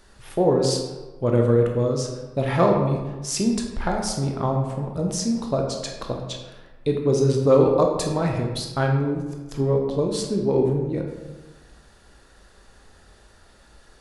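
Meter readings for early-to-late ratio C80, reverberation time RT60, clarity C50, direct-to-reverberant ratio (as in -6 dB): 6.0 dB, 1.2 s, 4.0 dB, 1.5 dB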